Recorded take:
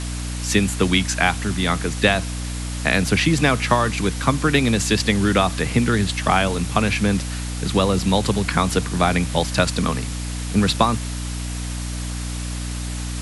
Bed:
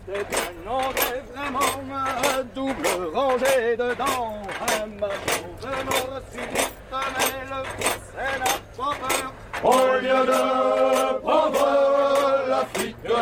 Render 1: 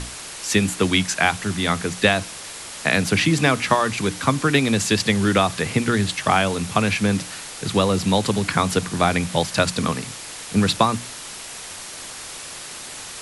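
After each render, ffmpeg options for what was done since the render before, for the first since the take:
-af "bandreject=f=60:t=h:w=6,bandreject=f=120:t=h:w=6,bandreject=f=180:t=h:w=6,bandreject=f=240:t=h:w=6,bandreject=f=300:t=h:w=6"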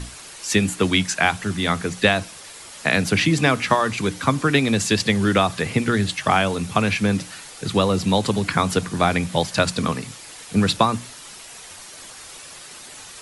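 -af "afftdn=nr=7:nf=-36"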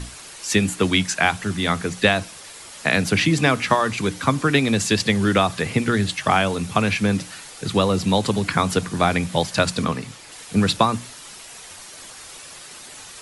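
-filter_complex "[0:a]asettb=1/sr,asplit=3[a][b][c];[a]atrim=end=9.844[d];[b]atrim=start=9.84:end=10.32,asetpts=PTS-STARTPTS,afade=t=in:d=0.004:c=qsin,afade=t=out:st=0.476:d=0.004:c=qsin,highshelf=f=6.2k:g=-7[e];[c]atrim=start=10.316[f];[d][e]acrossfade=d=0.004:c1=hsin:c2=qsin[g];[g][f]acrossfade=d=0.004:c1=qsin:c2=hsin"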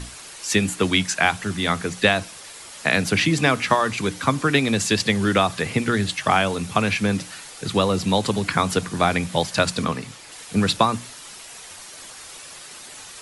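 -af "lowshelf=f=320:g=-2.5"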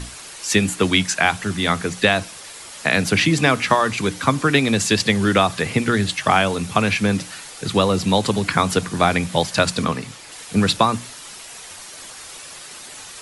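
-af "volume=2.5dB,alimiter=limit=-2dB:level=0:latency=1"

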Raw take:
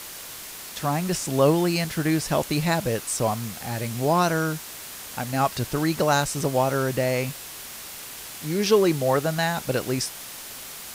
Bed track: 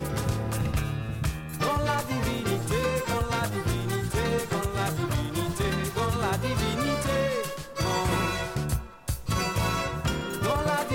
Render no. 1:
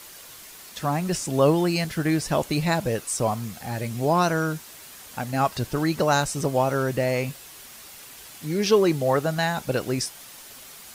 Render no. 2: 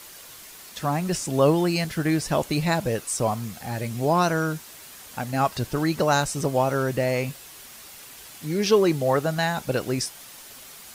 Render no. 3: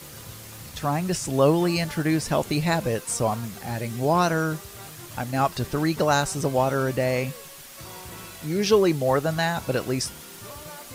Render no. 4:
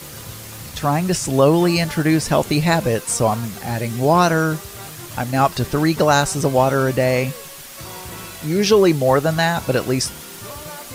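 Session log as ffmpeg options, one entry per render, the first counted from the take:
-af "afftdn=nr=7:nf=-39"
-af anull
-filter_complex "[1:a]volume=-16dB[a];[0:a][a]amix=inputs=2:normalize=0"
-af "volume=6.5dB,alimiter=limit=-3dB:level=0:latency=1"

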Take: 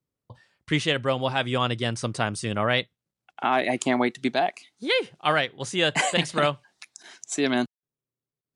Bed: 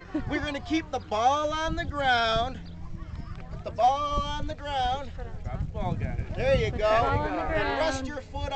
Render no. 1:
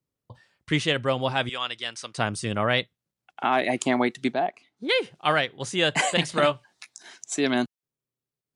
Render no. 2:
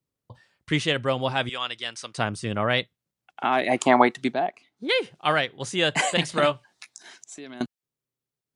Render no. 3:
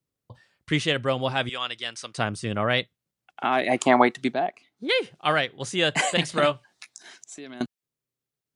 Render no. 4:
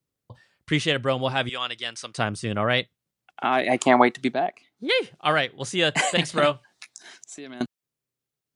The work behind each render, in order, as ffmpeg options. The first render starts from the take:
-filter_complex "[0:a]asettb=1/sr,asplit=3[a][b][c];[a]atrim=end=1.494[d];[b]atrim=start=1.49:end=2.18,asetpts=PTS-STARTPTS,afade=t=in:d=0.004:c=qsin,afade=t=out:st=0.686:d=0.004:c=qsin,bandpass=f=3.6k:t=q:w=0.54[e];[c]atrim=start=2.176[f];[d][e]acrossfade=d=0.004:c1=hsin:c2=qsin[g];[g][f]acrossfade=d=0.004:c1=qsin:c2=hsin,asettb=1/sr,asplit=3[h][i][j];[h]atrim=end=4.334[k];[i]atrim=start=4.33:end=4.89,asetpts=PTS-STARTPTS,afade=t=in:d=0.004:c=qsin,afade=t=out:st=0.556:d=0.004:c=qsin,lowpass=f=1.1k:p=1[l];[j]atrim=start=4.886[m];[k][l]acrossfade=d=0.004:c1=hsin:c2=qsin[n];[n][m]acrossfade=d=0.004:c1=qsin:c2=hsin,asettb=1/sr,asplit=3[o][p][q];[o]atrim=end=6.304[r];[p]atrim=start=6.3:end=7.1,asetpts=PTS-STARTPTS,afade=t=in:d=0.004:c=qsin,afade=t=out:st=0.796:d=0.004:c=qsin,asplit=2[s][t];[t]adelay=17,volume=-7.5dB[u];[s][u]amix=inputs=2:normalize=0,atrim=end_sample=35280[v];[q]atrim=start=7.096[w];[r][v]acrossfade=d=0.004:c1=hsin:c2=qsin[x];[x][w]acrossfade=d=0.004:c1=qsin:c2=hsin"
-filter_complex "[0:a]asettb=1/sr,asplit=3[a][b][c];[a]atrim=end=2.244[d];[b]atrim=start=2.24:end=2.7,asetpts=PTS-STARTPTS,afade=t=in:d=0.004:c=qsin,afade=t=out:st=0.456:d=0.004:c=qsin,highshelf=f=4.4k:g=-6.5[e];[c]atrim=start=2.696[f];[d][e]acrossfade=d=0.004:c1=hsin:c2=qsin[g];[g][f]acrossfade=d=0.004:c1=qsin:c2=hsin,asettb=1/sr,asplit=3[h][i][j];[h]atrim=end=3.714[k];[i]atrim=start=3.71:end=4.22,asetpts=PTS-STARTPTS,afade=t=in:d=0.004:c=qsin,afade=t=out:st=0.506:d=0.004:c=qsin,equalizer=f=950:w=0.84:g=11.5[l];[j]atrim=start=4.216[m];[k][l]acrossfade=d=0.004:c1=hsin:c2=qsin[n];[n][m]acrossfade=d=0.004:c1=qsin:c2=hsin,asettb=1/sr,asplit=3[o][p][q];[o]atrim=end=7.164[r];[p]atrim=start=7.16:end=7.61,asetpts=PTS-STARTPTS,afade=t=in:d=0.004:c=qsin,afade=t=out:st=0.446:d=0.004:c=qsin,acompressor=threshold=-43dB:ratio=3:attack=3.2:release=140:knee=1:detection=peak[s];[q]atrim=start=7.606[t];[r][s]acrossfade=d=0.004:c1=hsin:c2=qsin[u];[u][t]acrossfade=d=0.004:c1=qsin:c2=hsin"
-af "equalizer=f=920:t=o:w=0.28:g=-2.5"
-af "volume=1dB"

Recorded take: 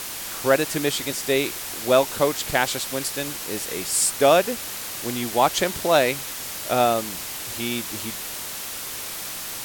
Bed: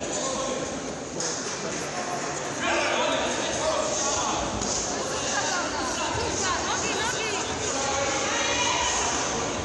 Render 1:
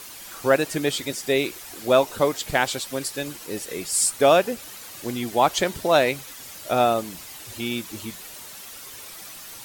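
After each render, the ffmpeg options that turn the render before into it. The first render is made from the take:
-af "afftdn=nr=10:nf=-33"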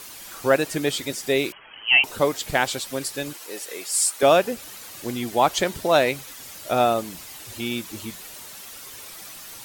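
-filter_complex "[0:a]asettb=1/sr,asplit=3[a][b][c];[a]atrim=end=1.524[d];[b]atrim=start=1.52:end=2.04,asetpts=PTS-STARTPTS,afade=t=in:d=0.004:c=qsin,afade=t=out:st=0.516:d=0.004:c=qsin,lowpass=f=2.8k:t=q:w=0.5098,lowpass=f=2.8k:t=q:w=0.6013,lowpass=f=2.8k:t=q:w=0.9,lowpass=f=2.8k:t=q:w=2.563,afreqshift=-3300[e];[c]atrim=start=2.036[f];[d][e]acrossfade=d=0.004:c1=hsin:c2=qsin[g];[g][f]acrossfade=d=0.004:c1=qsin:c2=hsin,asettb=1/sr,asplit=3[h][i][j];[h]atrim=end=3.334[k];[i]atrim=start=3.33:end=4.23,asetpts=PTS-STARTPTS,afade=t=in:d=0.004:c=qsin,afade=t=out:st=0.896:d=0.004:c=qsin,highpass=470[l];[j]atrim=start=4.226[m];[k][l]acrossfade=d=0.004:c1=hsin:c2=qsin[n];[n][m]acrossfade=d=0.004:c1=qsin:c2=hsin"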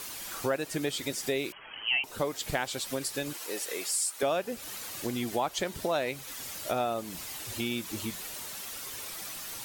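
-af "acompressor=threshold=-30dB:ratio=3"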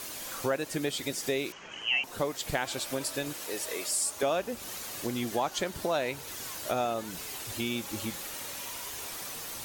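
-filter_complex "[1:a]volume=-22dB[a];[0:a][a]amix=inputs=2:normalize=0"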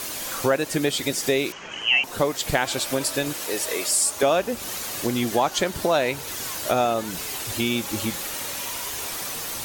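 -af "volume=8.5dB"

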